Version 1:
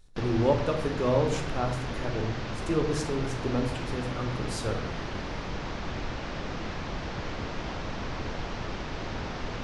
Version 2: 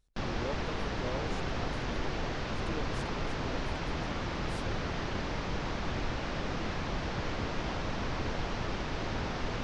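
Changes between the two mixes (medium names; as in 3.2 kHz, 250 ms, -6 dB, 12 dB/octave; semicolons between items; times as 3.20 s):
speech -12.0 dB; reverb: off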